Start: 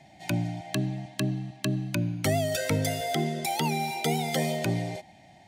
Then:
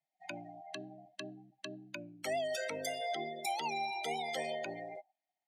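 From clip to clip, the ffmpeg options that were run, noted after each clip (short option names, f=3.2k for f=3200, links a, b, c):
-af "afftdn=nr=33:nf=-35,highpass=530,alimiter=limit=-22dB:level=0:latency=1:release=73,volume=-4.5dB"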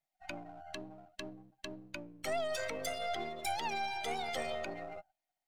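-af "aeval=exprs='if(lt(val(0),0),0.447*val(0),val(0))':c=same,volume=2.5dB"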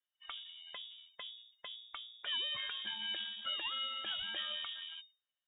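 -af "lowpass=f=3.1k:t=q:w=0.5098,lowpass=f=3.1k:t=q:w=0.6013,lowpass=f=3.1k:t=q:w=0.9,lowpass=f=3.1k:t=q:w=2.563,afreqshift=-3700,volume=-2.5dB"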